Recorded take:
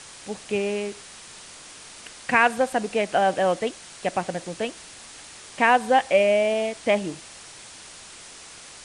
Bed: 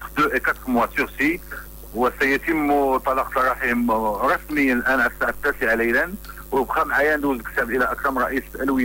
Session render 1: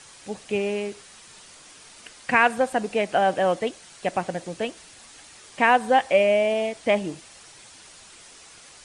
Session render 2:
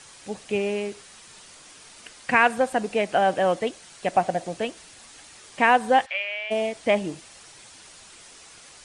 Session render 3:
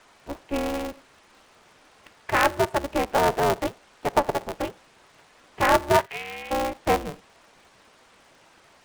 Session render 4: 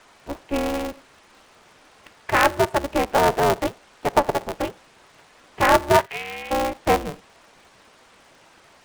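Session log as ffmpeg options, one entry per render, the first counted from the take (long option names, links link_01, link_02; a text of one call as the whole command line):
ffmpeg -i in.wav -af "afftdn=noise_reduction=6:noise_floor=-44" out.wav
ffmpeg -i in.wav -filter_complex "[0:a]asettb=1/sr,asplit=3[link_01][link_02][link_03];[link_01]atrim=end=4.144[link_04];[link_02]atrim=start=4.14:end=4.58,asetpts=PTS-STARTPTS,afade=type=in:duration=0.004:curve=qsin,afade=type=out:start_time=0.436:duration=0.004:curve=qsin,equalizer=frequency=700:width_type=o:width=0.44:gain=9.5[link_05];[link_03]atrim=start=4.576[link_06];[link_04][link_05]acrossfade=duration=0.004:curve1=hsin:curve2=qsin[link_07];[link_07][link_06]acrossfade=duration=0.004:curve1=qsin:curve2=hsin,asplit=3[link_08][link_09][link_10];[link_08]afade=type=out:start_time=6.05:duration=0.02[link_11];[link_09]asuperpass=centerf=2300:order=4:qfactor=0.96,afade=type=in:start_time=6.05:duration=0.02,afade=type=out:start_time=6.5:duration=0.02[link_12];[link_10]afade=type=in:start_time=6.5:duration=0.02[link_13];[link_11][link_12][link_13]amix=inputs=3:normalize=0" out.wav
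ffmpeg -i in.wav -af "bandpass=frequency=630:width_type=q:width=0.58:csg=0,aeval=exprs='val(0)*sgn(sin(2*PI*140*n/s))':channel_layout=same" out.wav
ffmpeg -i in.wav -af "volume=3dB" out.wav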